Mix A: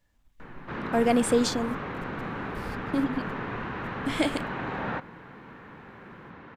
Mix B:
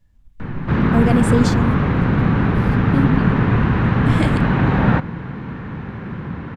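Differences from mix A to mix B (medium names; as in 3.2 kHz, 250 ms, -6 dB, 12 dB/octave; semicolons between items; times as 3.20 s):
background +10.5 dB; master: add tone controls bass +15 dB, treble 0 dB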